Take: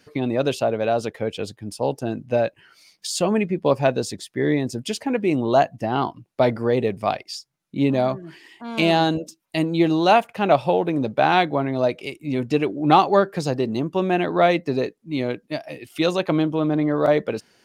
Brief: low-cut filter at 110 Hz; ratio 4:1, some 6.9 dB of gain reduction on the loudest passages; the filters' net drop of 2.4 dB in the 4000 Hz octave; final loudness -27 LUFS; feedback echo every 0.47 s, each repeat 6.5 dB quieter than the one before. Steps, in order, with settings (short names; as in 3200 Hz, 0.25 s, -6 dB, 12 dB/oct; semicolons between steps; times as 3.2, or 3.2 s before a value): HPF 110 Hz; bell 4000 Hz -3 dB; compressor 4:1, threshold -19 dBFS; feedback echo 0.47 s, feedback 47%, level -6.5 dB; gain -2 dB